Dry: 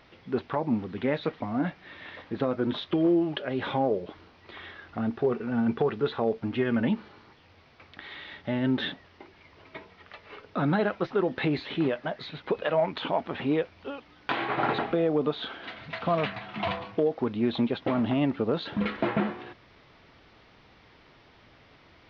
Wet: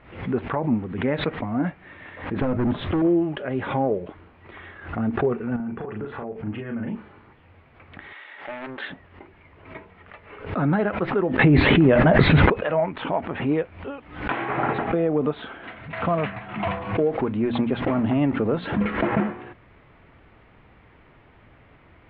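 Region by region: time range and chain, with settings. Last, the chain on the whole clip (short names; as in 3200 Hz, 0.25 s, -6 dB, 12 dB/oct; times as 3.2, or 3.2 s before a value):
2.41–3.02 low shelf 340 Hz +10 dB + hard clip -23 dBFS
5.56–6.95 compressor 4:1, threshold -34 dBFS + bell 3800 Hz -10 dB 0.23 oct + doubler 38 ms -3 dB
8.13–8.9 HPF 650 Hz + Doppler distortion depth 0.45 ms
11.39–12.5 low shelf 330 Hz +8.5 dB + fast leveller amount 100%
16.58–19.12 G.711 law mismatch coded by mu + notches 60/120/180/240 Hz
whole clip: LPF 2600 Hz 24 dB/oct; low shelf 140 Hz +7.5 dB; backwards sustainer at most 100 dB/s; gain +2 dB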